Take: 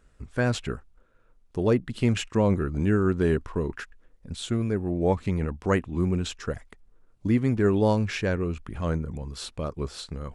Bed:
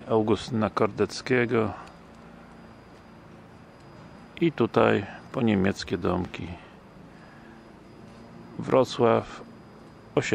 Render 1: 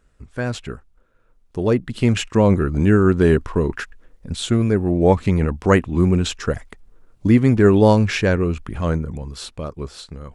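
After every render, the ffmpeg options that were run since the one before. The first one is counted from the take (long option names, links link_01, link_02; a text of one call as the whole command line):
ffmpeg -i in.wav -af "dynaudnorm=framelen=420:gausssize=9:maxgain=11.5dB" out.wav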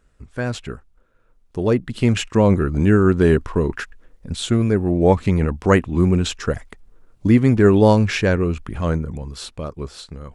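ffmpeg -i in.wav -af anull out.wav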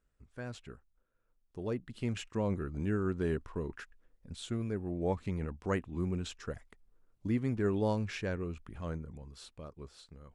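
ffmpeg -i in.wav -af "volume=-18dB" out.wav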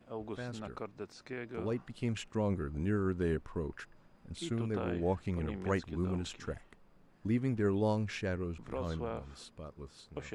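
ffmpeg -i in.wav -i bed.wav -filter_complex "[1:a]volume=-19dB[link_01];[0:a][link_01]amix=inputs=2:normalize=0" out.wav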